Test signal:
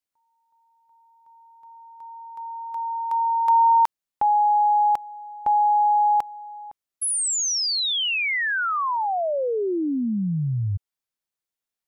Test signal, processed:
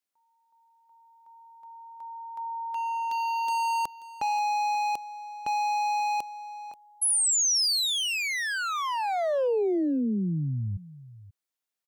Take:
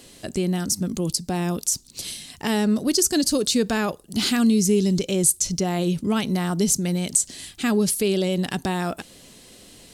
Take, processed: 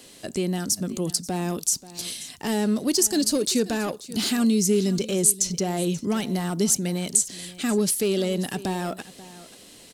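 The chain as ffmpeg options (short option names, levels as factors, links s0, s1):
-filter_complex "[0:a]lowshelf=f=120:g=-11,acrossover=split=530|4900[s0][s1][s2];[s1]asoftclip=type=hard:threshold=0.0335[s3];[s0][s3][s2]amix=inputs=3:normalize=0,aecho=1:1:534:0.133"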